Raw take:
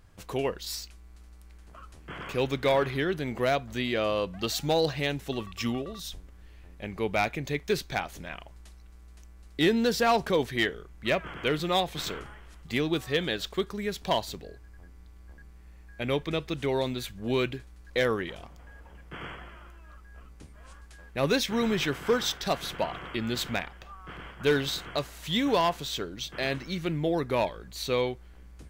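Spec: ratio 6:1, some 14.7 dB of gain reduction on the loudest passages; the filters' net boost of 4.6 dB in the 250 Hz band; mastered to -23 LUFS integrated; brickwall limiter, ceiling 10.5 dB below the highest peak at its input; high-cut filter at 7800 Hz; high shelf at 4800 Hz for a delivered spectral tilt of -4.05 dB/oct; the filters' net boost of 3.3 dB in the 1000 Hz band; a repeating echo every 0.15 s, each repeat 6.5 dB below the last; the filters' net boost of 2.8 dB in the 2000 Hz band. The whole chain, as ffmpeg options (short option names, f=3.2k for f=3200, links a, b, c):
-af "lowpass=7.8k,equalizer=f=250:t=o:g=5.5,equalizer=f=1k:t=o:g=3.5,equalizer=f=2k:t=o:g=3.5,highshelf=f=4.8k:g=-6.5,acompressor=threshold=-34dB:ratio=6,alimiter=level_in=8dB:limit=-24dB:level=0:latency=1,volume=-8dB,aecho=1:1:150|300|450|600|750|900:0.473|0.222|0.105|0.0491|0.0231|0.0109,volume=18.5dB"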